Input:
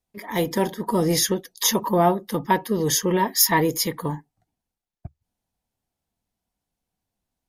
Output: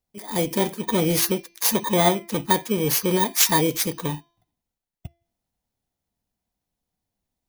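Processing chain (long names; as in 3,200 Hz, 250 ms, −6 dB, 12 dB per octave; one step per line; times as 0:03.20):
samples in bit-reversed order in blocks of 16 samples
hum removal 340.4 Hz, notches 18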